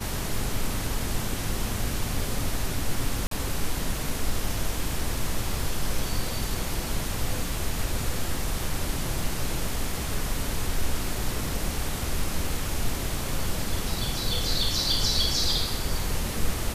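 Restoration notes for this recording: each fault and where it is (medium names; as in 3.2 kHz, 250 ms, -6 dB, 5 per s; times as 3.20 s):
3.27–3.31 s: dropout 43 ms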